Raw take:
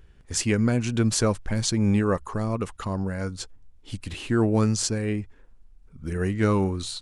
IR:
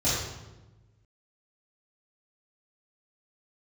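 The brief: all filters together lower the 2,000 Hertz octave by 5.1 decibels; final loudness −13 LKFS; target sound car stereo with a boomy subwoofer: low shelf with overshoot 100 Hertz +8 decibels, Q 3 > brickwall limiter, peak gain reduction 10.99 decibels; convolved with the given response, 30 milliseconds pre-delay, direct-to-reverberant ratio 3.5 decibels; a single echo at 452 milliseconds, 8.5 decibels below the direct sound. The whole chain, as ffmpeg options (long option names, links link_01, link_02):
-filter_complex "[0:a]equalizer=frequency=2000:width_type=o:gain=-7,aecho=1:1:452:0.376,asplit=2[link_01][link_02];[1:a]atrim=start_sample=2205,adelay=30[link_03];[link_02][link_03]afir=irnorm=-1:irlink=0,volume=-16dB[link_04];[link_01][link_04]amix=inputs=2:normalize=0,lowshelf=frequency=100:width_type=q:width=3:gain=8,volume=10dB,alimiter=limit=-5dB:level=0:latency=1"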